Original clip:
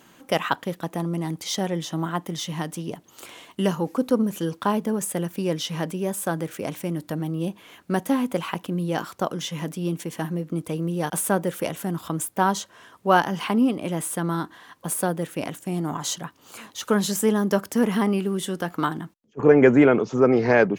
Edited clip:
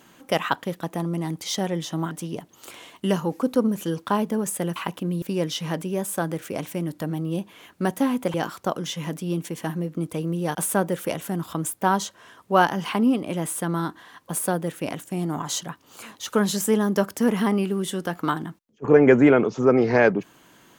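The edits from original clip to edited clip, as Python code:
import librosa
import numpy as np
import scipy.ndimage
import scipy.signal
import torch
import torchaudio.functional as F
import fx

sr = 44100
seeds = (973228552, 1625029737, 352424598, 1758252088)

y = fx.edit(x, sr, fx.cut(start_s=2.11, length_s=0.55),
    fx.move(start_s=8.43, length_s=0.46, to_s=5.31), tone=tone)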